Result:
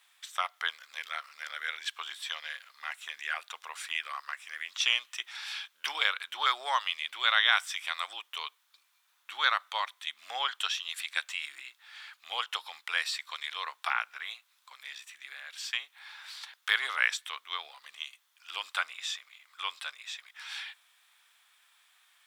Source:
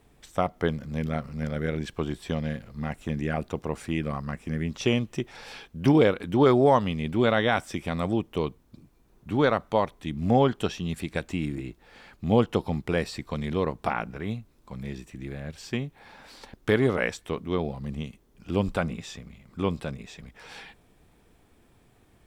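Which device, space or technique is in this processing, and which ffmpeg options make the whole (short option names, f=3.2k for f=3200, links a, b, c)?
headphones lying on a table: -af "highpass=f=1.2k:w=0.5412,highpass=f=1.2k:w=1.3066,equalizer=f=3.5k:t=o:w=0.44:g=6,volume=3.5dB"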